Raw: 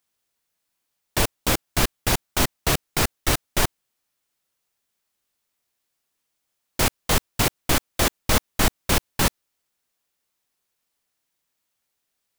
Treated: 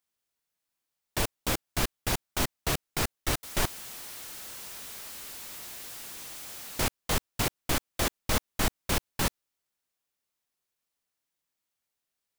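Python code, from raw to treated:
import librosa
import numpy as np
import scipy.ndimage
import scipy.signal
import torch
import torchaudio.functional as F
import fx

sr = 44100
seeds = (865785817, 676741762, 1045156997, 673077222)

y = fx.zero_step(x, sr, step_db=-28.5, at=(3.43, 6.8))
y = y * 10.0 ** (-7.5 / 20.0)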